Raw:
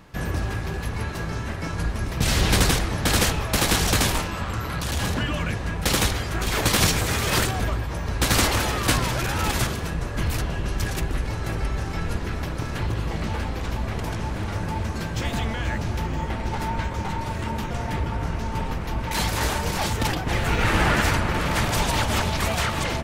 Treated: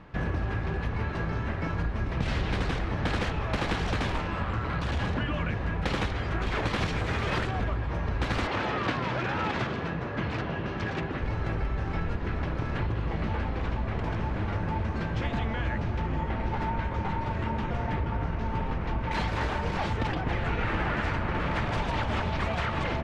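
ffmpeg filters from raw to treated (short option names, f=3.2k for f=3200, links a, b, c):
-filter_complex "[0:a]asettb=1/sr,asplit=3[a][b][c];[a]atrim=end=8.474[d];[b]atrim=start=8.47:end=11.22,asetpts=PTS-STARTPTS,afade=t=in:d=0.004:c=qsin,afade=t=out:st=2.746:d=0.004:c=qsin,highpass=130,lowpass=5.8k[e];[c]atrim=start=11.216[f];[d][e]acrossfade=d=0.004:c1=hsin:c2=qsin[g];[g][f]acrossfade=d=0.004:c1=qsin:c2=hsin,lowpass=2.6k,acompressor=threshold=-25dB:ratio=6"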